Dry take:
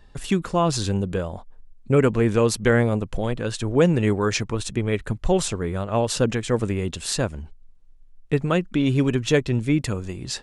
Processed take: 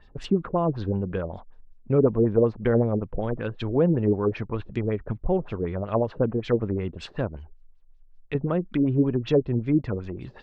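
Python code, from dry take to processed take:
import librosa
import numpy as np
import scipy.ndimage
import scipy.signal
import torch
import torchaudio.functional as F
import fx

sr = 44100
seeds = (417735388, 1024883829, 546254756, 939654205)

y = fx.env_lowpass_down(x, sr, base_hz=880.0, full_db=-17.5)
y = fx.peak_eq(y, sr, hz=200.0, db=-14.0, octaves=1.4, at=(7.37, 8.35))
y = fx.filter_lfo_lowpass(y, sr, shape='sine', hz=5.3, low_hz=360.0, high_hz=5200.0, q=2.0)
y = y * librosa.db_to_amplitude(-3.5)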